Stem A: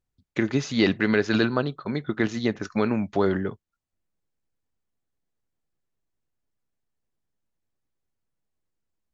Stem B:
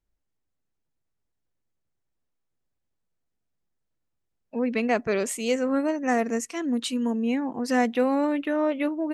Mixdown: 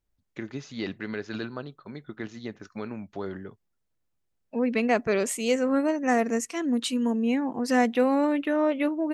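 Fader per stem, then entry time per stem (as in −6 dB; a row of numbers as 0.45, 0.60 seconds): −12.0, +0.5 decibels; 0.00, 0.00 seconds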